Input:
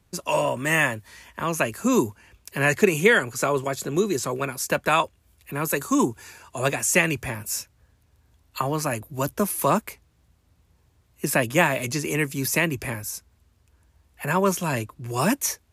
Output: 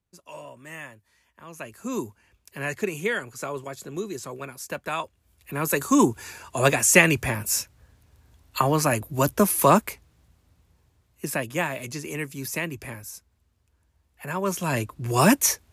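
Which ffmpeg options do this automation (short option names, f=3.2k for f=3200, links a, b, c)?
-af "volume=15.5dB,afade=t=in:st=1.45:d=0.53:silence=0.334965,afade=t=in:st=4.98:d=1.24:silence=0.223872,afade=t=out:st=9.73:d=1.72:silence=0.281838,afade=t=in:st=14.4:d=0.68:silence=0.266073"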